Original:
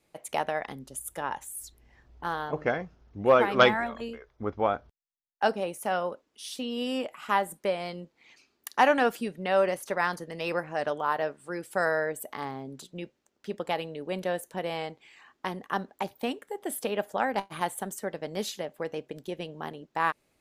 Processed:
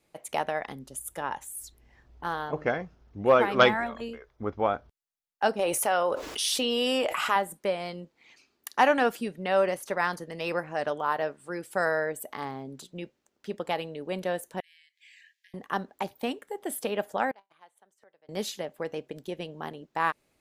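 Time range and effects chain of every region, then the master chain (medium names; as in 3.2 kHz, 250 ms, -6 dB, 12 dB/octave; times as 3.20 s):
5.59–7.36 s: peaking EQ 200 Hz -11 dB 1.1 oct + level flattener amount 70%
14.60–15.54 s: compression 5:1, threshold -49 dBFS + brick-wall FIR high-pass 1.6 kHz
17.31–18.29 s: three-band isolator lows -14 dB, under 400 Hz, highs -14 dB, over 6.3 kHz + inverted gate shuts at -35 dBFS, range -25 dB
whole clip: none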